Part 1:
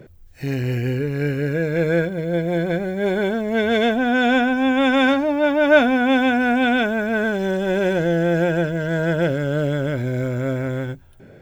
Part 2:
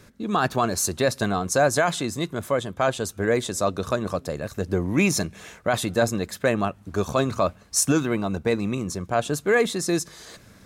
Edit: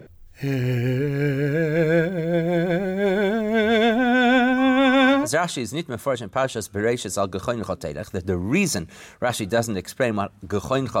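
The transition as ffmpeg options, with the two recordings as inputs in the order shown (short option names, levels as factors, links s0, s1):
-filter_complex "[0:a]asettb=1/sr,asplit=3[s0][s1][s2];[s0]atrim=end=4.584[s3];[s1]atrim=start=4.58:end=5.28,asetpts=PTS-STARTPTS,afade=t=in:d=0.004:c=qsin,afade=t=out:st=0.696:d=0.004:c=qsin,aeval=exprs='val(0)+0.0251*sin(2*PI*1100*n/s)':c=same[s4];[s2]atrim=start=5.276[s5];[s3][s4]acrossfade=d=0.004:c1=hsin:c2=qsin[s6];[s6][s5]acrossfade=d=0.004:c1=qsin:c2=hsin,apad=whole_dur=11,atrim=end=11,atrim=end=5.28,asetpts=PTS-STARTPTS[s7];[1:a]atrim=start=1.66:end=7.44,asetpts=PTS-STARTPTS[s8];[s7][s8]acrossfade=d=0.06:c1=tri:c2=tri"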